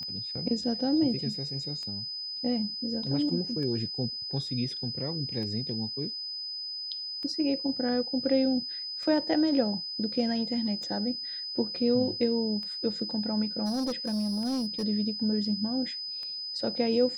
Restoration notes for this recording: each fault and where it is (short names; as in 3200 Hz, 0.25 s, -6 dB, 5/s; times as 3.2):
tick 33 1/3 rpm -28 dBFS
tone 5000 Hz -34 dBFS
13.65–14.84 clipped -26.5 dBFS